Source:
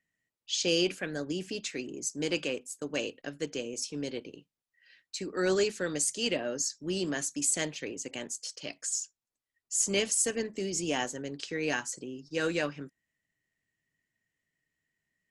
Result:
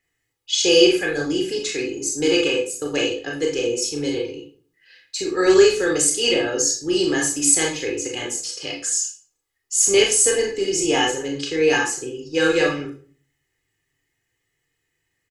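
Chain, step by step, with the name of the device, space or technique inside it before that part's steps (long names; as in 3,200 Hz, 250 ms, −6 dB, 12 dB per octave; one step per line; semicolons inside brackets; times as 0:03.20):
microphone above a desk (comb filter 2.4 ms, depth 81%; convolution reverb RT60 0.45 s, pre-delay 23 ms, DRR −0.5 dB)
level +6.5 dB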